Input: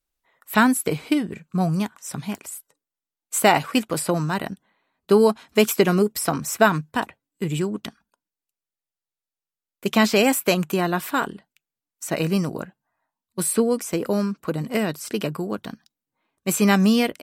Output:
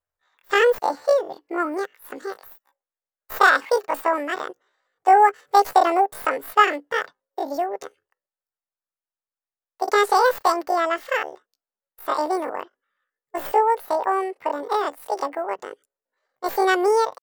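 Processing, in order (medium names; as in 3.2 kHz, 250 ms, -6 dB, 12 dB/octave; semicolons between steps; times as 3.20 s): tracing distortion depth 0.037 ms; pitch shift +11 st; high-order bell 900 Hz +11 dB 2.4 oct; trim -8.5 dB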